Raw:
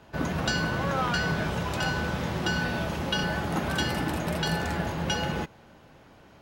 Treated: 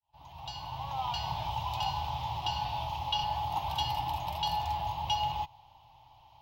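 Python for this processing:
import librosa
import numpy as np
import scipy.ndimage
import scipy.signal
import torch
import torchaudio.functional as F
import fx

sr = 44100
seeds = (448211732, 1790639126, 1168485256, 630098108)

y = fx.fade_in_head(x, sr, length_s=1.31)
y = fx.curve_eq(y, sr, hz=(130.0, 200.0, 300.0, 480.0, 880.0, 1500.0, 3000.0, 5100.0, 8900.0, 13000.0), db=(0, -25, -17, -22, 13, -22, 5, -1, -14, 2))
y = fx.doppler_dist(y, sr, depth_ms=0.1, at=(2.09, 3.38))
y = y * librosa.db_to_amplitude(-5.0)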